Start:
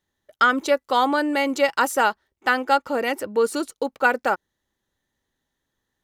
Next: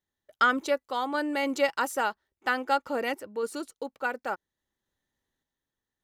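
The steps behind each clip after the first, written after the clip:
sample-and-hold tremolo
level −5 dB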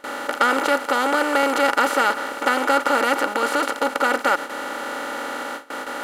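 compressor on every frequency bin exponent 0.2
noise gate with hold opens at −20 dBFS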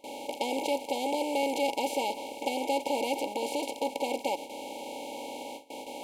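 brick-wall band-stop 960–2,100 Hz
level −8 dB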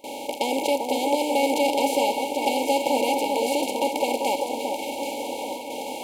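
high-shelf EQ 12,000 Hz +6 dB
delay that swaps between a low-pass and a high-pass 392 ms, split 1,500 Hz, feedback 72%, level −4 dB
level +6 dB

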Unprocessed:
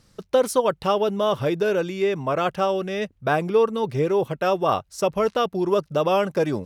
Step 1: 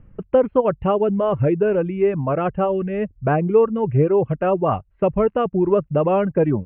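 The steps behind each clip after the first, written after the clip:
Butterworth low-pass 2,900 Hz 72 dB per octave
reverb reduction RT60 0.6 s
spectral tilt −3.5 dB per octave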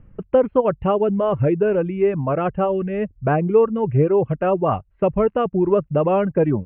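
no processing that can be heard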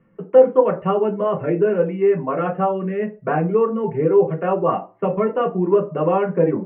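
convolution reverb RT60 0.30 s, pre-delay 3 ms, DRR −1 dB
level −11.5 dB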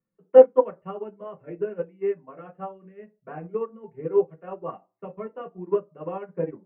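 expander for the loud parts 2.5 to 1, over −25 dBFS
level +1 dB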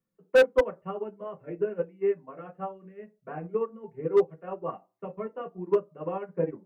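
hard clipping −14 dBFS, distortion −6 dB

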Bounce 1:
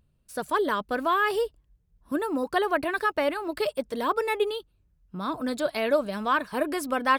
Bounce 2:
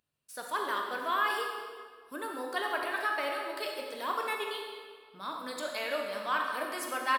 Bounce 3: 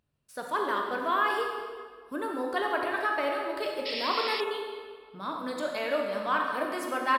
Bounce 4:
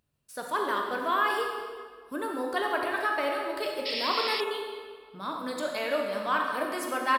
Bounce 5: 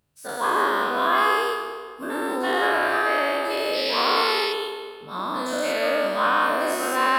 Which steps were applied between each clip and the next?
high-pass filter 1,400 Hz 6 dB per octave; double-tracking delay 20 ms −12 dB; convolution reverb RT60 1.8 s, pre-delay 32 ms, DRR 1 dB; level −3.5 dB
spectral tilt −2.5 dB per octave; sound drawn into the spectrogram noise, 0:03.85–0:04.41, 1,800–5,500 Hz −38 dBFS; level +3.5 dB
high-shelf EQ 4,900 Hz +6 dB
every bin's largest magnitude spread in time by 240 ms

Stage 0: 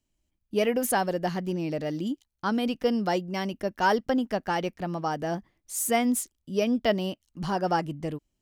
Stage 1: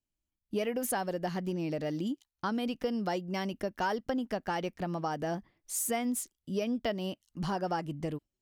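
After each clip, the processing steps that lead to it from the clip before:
noise reduction from a noise print of the clip's start 12 dB
downward compressor 3 to 1, threshold −31 dBFS, peak gain reduction 10 dB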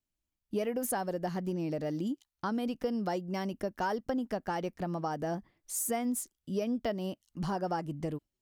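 dynamic equaliser 2,900 Hz, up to −6 dB, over −52 dBFS, Q 0.84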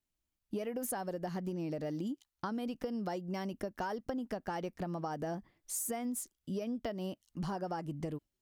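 downward compressor, threshold −34 dBFS, peak gain reduction 7.5 dB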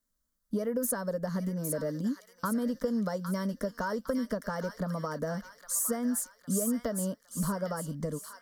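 phaser with its sweep stopped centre 520 Hz, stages 8
delay with a high-pass on its return 809 ms, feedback 47%, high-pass 1,600 Hz, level −4 dB
level +8 dB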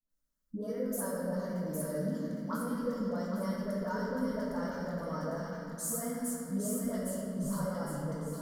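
all-pass dispersion highs, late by 95 ms, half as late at 780 Hz
convolution reverb RT60 2.9 s, pre-delay 6 ms, DRR −4 dB
level −8.5 dB

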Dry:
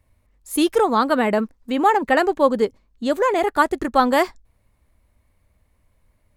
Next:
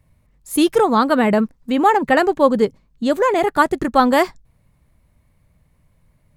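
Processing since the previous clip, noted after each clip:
parametric band 150 Hz +14.5 dB 0.6 octaves
level +2 dB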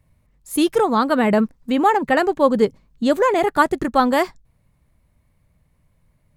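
speech leveller within 3 dB 0.5 s
level −1 dB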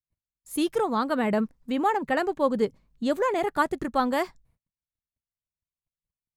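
noise gate −54 dBFS, range −35 dB
level −8 dB

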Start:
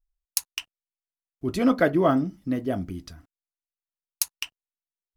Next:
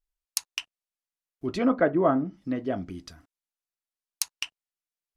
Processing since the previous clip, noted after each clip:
treble cut that deepens with the level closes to 1,500 Hz, closed at −18.5 dBFS
low-shelf EQ 190 Hz −8 dB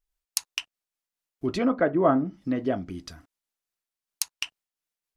in parallel at +0.5 dB: downward compressor, threshold −29 dBFS, peak gain reduction 12 dB
on the sum: amplitude modulation by smooth noise, depth 55%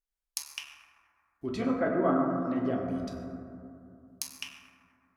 convolution reverb RT60 2.6 s, pre-delay 6 ms, DRR −1.5 dB
level −8.5 dB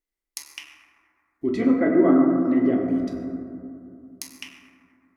hollow resonant body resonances 310/2,000 Hz, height 15 dB, ringing for 25 ms

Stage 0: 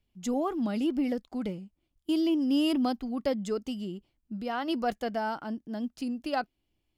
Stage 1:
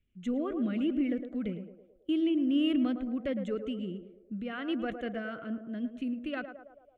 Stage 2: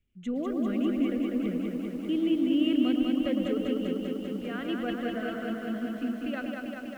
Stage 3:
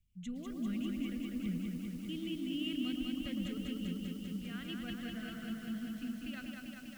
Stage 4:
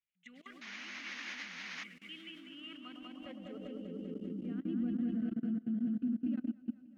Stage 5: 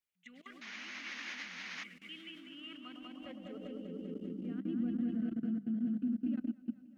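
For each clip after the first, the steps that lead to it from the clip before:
low-pass filter 4,100 Hz 12 dB per octave; phaser with its sweep stopped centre 2,100 Hz, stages 4; feedback echo with a band-pass in the loop 109 ms, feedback 63%, band-pass 610 Hz, level −7 dB
feedback echo at a low word length 197 ms, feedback 80%, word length 10 bits, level −3.5 dB
drawn EQ curve 170 Hz 0 dB, 270 Hz −14 dB, 520 Hz −23 dB, 5,000 Hz 0 dB; level +1.5 dB
sound drawn into the spectrogram noise, 0:00.61–0:01.84, 300–6,800 Hz −45 dBFS; output level in coarse steps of 22 dB; band-pass filter sweep 2,000 Hz → 260 Hz, 0:02.12–0:04.78; level +13 dB
mains-hum notches 50/100/150/200 Hz

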